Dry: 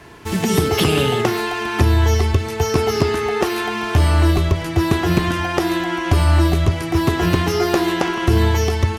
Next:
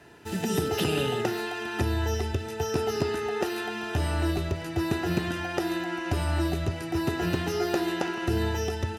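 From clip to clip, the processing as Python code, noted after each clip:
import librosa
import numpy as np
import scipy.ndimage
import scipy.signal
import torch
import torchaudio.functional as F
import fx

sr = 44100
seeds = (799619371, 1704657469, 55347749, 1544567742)

y = fx.notch_comb(x, sr, f0_hz=1100.0)
y = y * 10.0 ** (-9.0 / 20.0)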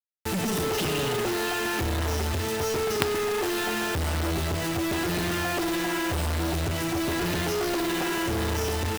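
y = fx.quant_companded(x, sr, bits=2)
y = y * 10.0 ** (-1.0 / 20.0)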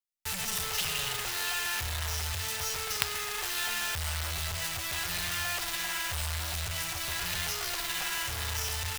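y = fx.tone_stack(x, sr, knobs='10-0-10')
y = y * 10.0 ** (2.0 / 20.0)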